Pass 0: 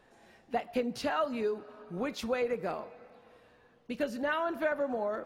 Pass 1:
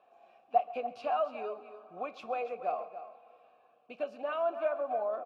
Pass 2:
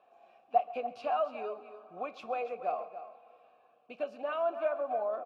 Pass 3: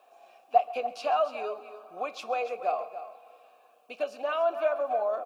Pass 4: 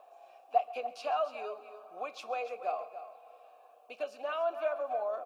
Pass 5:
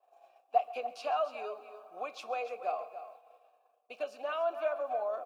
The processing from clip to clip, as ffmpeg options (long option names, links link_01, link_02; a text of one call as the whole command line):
ffmpeg -i in.wav -filter_complex "[0:a]asplit=3[link_01][link_02][link_03];[link_01]bandpass=frequency=730:width_type=q:width=8,volume=0dB[link_04];[link_02]bandpass=frequency=1090:width_type=q:width=8,volume=-6dB[link_05];[link_03]bandpass=frequency=2440:width_type=q:width=8,volume=-9dB[link_06];[link_04][link_05][link_06]amix=inputs=3:normalize=0,asplit=2[link_07][link_08];[link_08]aecho=0:1:135|288:0.106|0.237[link_09];[link_07][link_09]amix=inputs=2:normalize=0,volume=8dB" out.wav
ffmpeg -i in.wav -af anull out.wav
ffmpeg -i in.wav -af "bass=frequency=250:gain=-12,treble=frequency=4000:gain=13,volume=5dB" out.wav
ffmpeg -i in.wav -filter_complex "[0:a]highpass=frequency=270:poles=1,acrossover=split=610|760|2700[link_01][link_02][link_03][link_04];[link_02]acompressor=mode=upward:threshold=-42dB:ratio=2.5[link_05];[link_01][link_05][link_03][link_04]amix=inputs=4:normalize=0,volume=-5dB" out.wav
ffmpeg -i in.wav -af "agate=range=-33dB:threshold=-49dB:ratio=3:detection=peak" out.wav